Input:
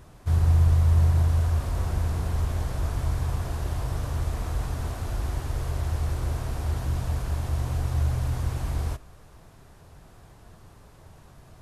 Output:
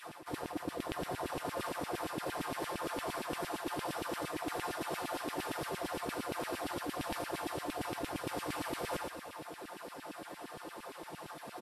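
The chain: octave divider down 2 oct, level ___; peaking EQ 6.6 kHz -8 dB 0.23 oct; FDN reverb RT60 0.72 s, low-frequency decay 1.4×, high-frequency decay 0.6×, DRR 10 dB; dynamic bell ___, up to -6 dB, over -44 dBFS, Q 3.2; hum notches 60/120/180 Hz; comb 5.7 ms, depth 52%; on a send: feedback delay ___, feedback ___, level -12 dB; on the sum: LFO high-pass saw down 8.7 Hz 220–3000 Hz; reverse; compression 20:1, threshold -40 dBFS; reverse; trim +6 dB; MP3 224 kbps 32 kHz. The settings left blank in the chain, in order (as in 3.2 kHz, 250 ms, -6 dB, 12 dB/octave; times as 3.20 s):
+1 dB, 220 Hz, 130 ms, 43%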